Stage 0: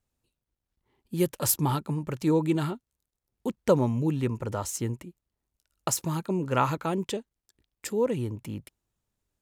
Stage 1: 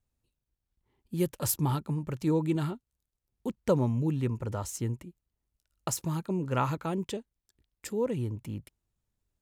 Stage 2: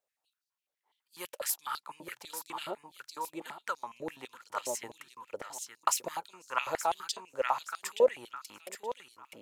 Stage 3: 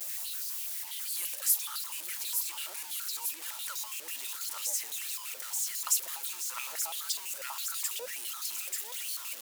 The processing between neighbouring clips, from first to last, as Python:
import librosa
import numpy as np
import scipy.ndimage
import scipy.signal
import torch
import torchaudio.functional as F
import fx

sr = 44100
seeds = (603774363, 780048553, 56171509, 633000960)

y1 = fx.low_shelf(x, sr, hz=150.0, db=8.0)
y1 = F.gain(torch.from_numpy(y1), -5.0).numpy()
y2 = fx.echo_feedback(y1, sr, ms=874, feedback_pct=21, wet_db=-8.5)
y2 = fx.rider(y2, sr, range_db=5, speed_s=0.5)
y2 = fx.filter_held_highpass(y2, sr, hz=12.0, low_hz=570.0, high_hz=4700.0)
y3 = y2 + 0.5 * 10.0 ** (-31.0 / 20.0) * np.sign(y2)
y3 = fx.vibrato(y3, sr, rate_hz=0.57, depth_cents=41.0)
y3 = np.diff(y3, prepend=0.0)
y3 = F.gain(torch.from_numpy(y3), 1.5).numpy()